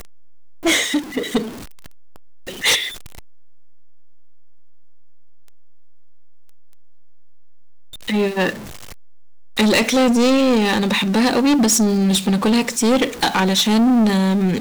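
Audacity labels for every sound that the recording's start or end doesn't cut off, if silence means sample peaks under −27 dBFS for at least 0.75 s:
2.480000	2.890000	sound
8.080000	8.540000	sound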